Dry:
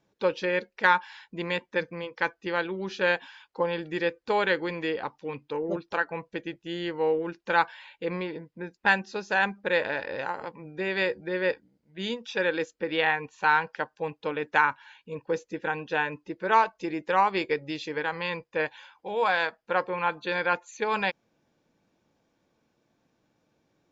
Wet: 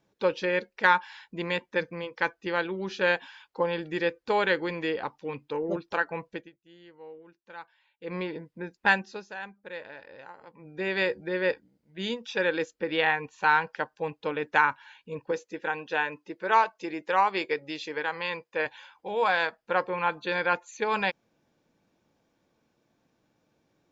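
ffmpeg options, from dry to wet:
ffmpeg -i in.wav -filter_complex "[0:a]asettb=1/sr,asplit=3[link_01][link_02][link_03];[link_01]atrim=end=15.314[link_04];[link_02]atrim=start=15.31:end=18.66,asetpts=PTS-STARTPTS,afade=type=in:duration=0.004:curve=qsin,afade=type=out:start_time=3.346:duration=0.004:curve=qsin,highpass=frequency=350:poles=1[link_05];[link_03]atrim=start=18.656[link_06];[link_04][link_05]acrossfade=duration=0.004:curve1=hsin:curve2=qsin[link_07];[link_07][link_06]acrossfade=duration=0.004:curve1=qsin:curve2=hsin,asplit=5[link_08][link_09][link_10][link_11][link_12];[link_08]atrim=end=6.5,asetpts=PTS-STARTPTS,afade=type=out:start_time=6.3:duration=0.2:silence=0.0944061[link_13];[link_09]atrim=start=6.5:end=7.99,asetpts=PTS-STARTPTS,volume=-20.5dB[link_14];[link_10]atrim=start=7.99:end=9.34,asetpts=PTS-STARTPTS,afade=type=in:duration=0.2:silence=0.0944061,afade=type=out:start_time=0.93:duration=0.42:silence=0.188365[link_15];[link_11]atrim=start=9.34:end=10.45,asetpts=PTS-STARTPTS,volume=-14.5dB[link_16];[link_12]atrim=start=10.45,asetpts=PTS-STARTPTS,afade=type=in:duration=0.42:silence=0.188365[link_17];[link_13][link_14][link_15][link_16][link_17]concat=n=5:v=0:a=1" out.wav

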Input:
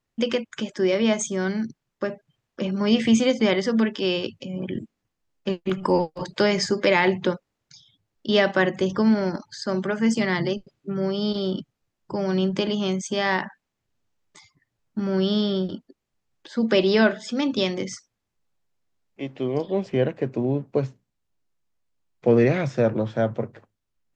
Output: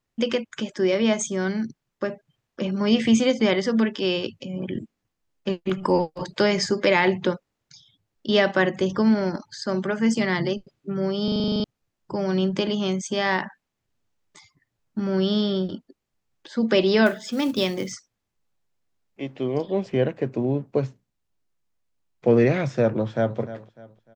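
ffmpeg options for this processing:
ffmpeg -i in.wav -filter_complex "[0:a]asettb=1/sr,asplit=3[link_01][link_02][link_03];[link_01]atrim=end=17.064[link_04];[link_02]atrim=start=17.06:end=17.92,asetpts=PTS-STARTPTS,afade=type=in:duration=0.004:curve=qsin,afade=type=out:start_time=0.856:duration=0.004:curve=qsin,acrusher=bits=6:mode=log:mix=0:aa=0.000001[link_05];[link_03]atrim=start=17.916[link_06];[link_04][link_05]acrossfade=duration=0.004:curve1=hsin:curve2=qsin[link_07];[link_07][link_06]acrossfade=duration=0.004:curve1=qsin:curve2=hsin,asplit=2[link_08][link_09];[link_09]afade=type=in:start_time=22.96:duration=0.01,afade=type=out:start_time=23.38:duration=0.01,aecho=0:1:300|600|900:0.199526|0.0698342|0.024442[link_10];[link_08][link_10]amix=inputs=2:normalize=0,asplit=11[link_11][link_12][link_13][link_14][link_15][link_16][link_17][link_18][link_19][link_20][link_21];[link_11]atrim=end=11.282[link_22];[link_12]atrim=start=11.238:end=11.282[link_23];[link_13]atrim=start=11.238:end=11.282[link_24];[link_14]atrim=start=11.238:end=11.282[link_25];[link_15]atrim=start=11.238:end=11.282[link_26];[link_16]atrim=start=11.238:end=11.282[link_27];[link_17]atrim=start=11.238:end=11.282[link_28];[link_18]atrim=start=11.238:end=11.282[link_29];[link_19]atrim=start=11.238:end=11.282[link_30];[link_20]atrim=start=11.238:end=11.282[link_31];[link_21]atrim=start=11.638[link_32];[link_22][link_23]acrossfade=duration=0.004:curve1=hsin:curve2=hsin[link_33];[link_33][link_24]acrossfade=duration=0.004:curve1=hsin:curve2=hsin[link_34];[link_34][link_25]acrossfade=duration=0.004:curve1=hsin:curve2=hsin[link_35];[link_35][link_26]acrossfade=duration=0.004:curve1=hsin:curve2=hsin[link_36];[link_36][link_27]acrossfade=duration=0.004:curve1=hsin:curve2=hsin[link_37];[link_37][link_28]acrossfade=duration=0.004:curve1=hsin:curve2=hsin[link_38];[link_38][link_29]acrossfade=duration=0.004:curve1=hsin:curve2=hsin[link_39];[link_39][link_30]acrossfade=duration=0.004:curve1=hsin:curve2=hsin[link_40];[link_40][link_31]acrossfade=duration=0.004:curve1=hsin:curve2=hsin[link_41];[link_41][link_32]acrossfade=duration=0.004:curve1=hsin:curve2=hsin" out.wav

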